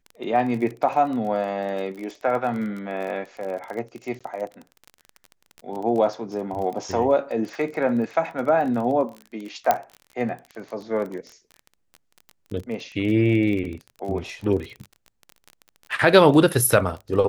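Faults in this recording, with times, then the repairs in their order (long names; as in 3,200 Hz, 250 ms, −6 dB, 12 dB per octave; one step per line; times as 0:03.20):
surface crackle 27 per second −30 dBFS
0:04.19–0:04.21: drop-out 16 ms
0:09.71: click −5 dBFS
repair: click removal
repair the gap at 0:04.19, 16 ms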